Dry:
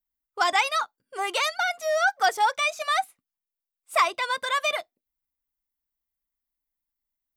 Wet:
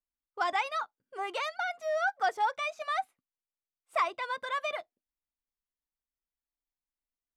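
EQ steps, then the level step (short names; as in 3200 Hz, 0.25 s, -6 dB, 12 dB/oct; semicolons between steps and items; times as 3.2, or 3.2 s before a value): LPF 1800 Hz 6 dB/oct; -5.5 dB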